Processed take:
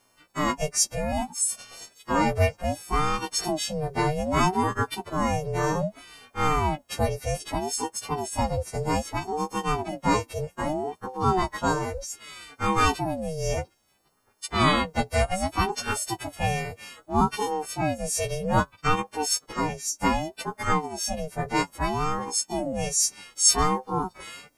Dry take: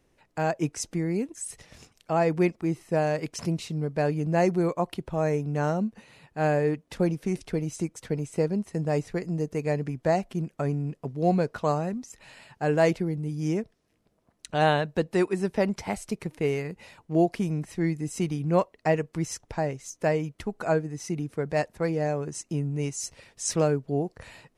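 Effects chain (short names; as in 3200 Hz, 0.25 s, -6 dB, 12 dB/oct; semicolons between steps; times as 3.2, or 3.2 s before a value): frequency quantiser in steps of 3 st; ring modulator with a swept carrier 460 Hz, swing 40%, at 0.63 Hz; gain +3.5 dB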